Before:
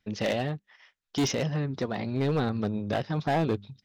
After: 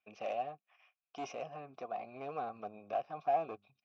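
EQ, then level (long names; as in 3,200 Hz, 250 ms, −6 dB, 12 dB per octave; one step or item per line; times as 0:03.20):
dynamic equaliser 2,800 Hz, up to −7 dB, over −48 dBFS, Q 0.89
formant filter a
Chebyshev low-pass with heavy ripple 7,800 Hz, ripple 9 dB
+9.0 dB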